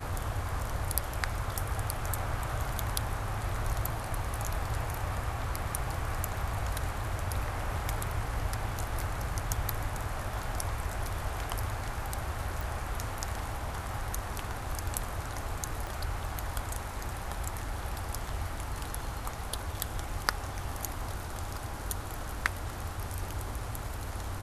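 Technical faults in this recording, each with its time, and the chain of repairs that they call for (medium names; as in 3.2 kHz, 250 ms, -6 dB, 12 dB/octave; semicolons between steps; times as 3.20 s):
12.61 s: pop
15.87 s: pop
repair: de-click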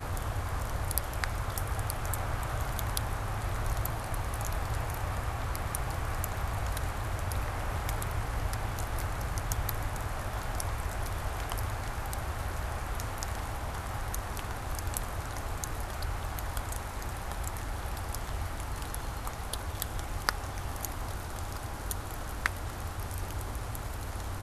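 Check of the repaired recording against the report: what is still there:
15.87 s: pop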